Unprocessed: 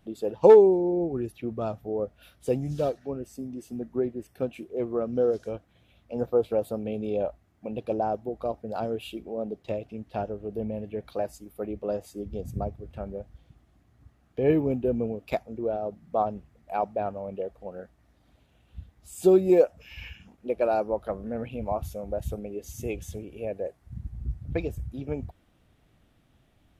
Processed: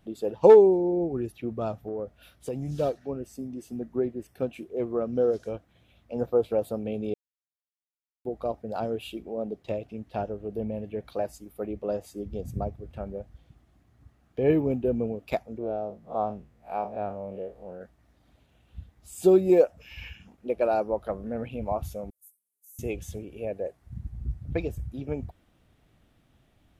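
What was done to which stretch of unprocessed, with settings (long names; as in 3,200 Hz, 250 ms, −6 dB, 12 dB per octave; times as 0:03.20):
0:01.86–0:02.74: downward compressor, threshold −28 dBFS
0:07.14–0:08.25: silence
0:15.58–0:17.81: spectrum smeared in time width 95 ms
0:22.10–0:22.79: inverse Chebyshev high-pass filter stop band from 2,400 Hz, stop band 70 dB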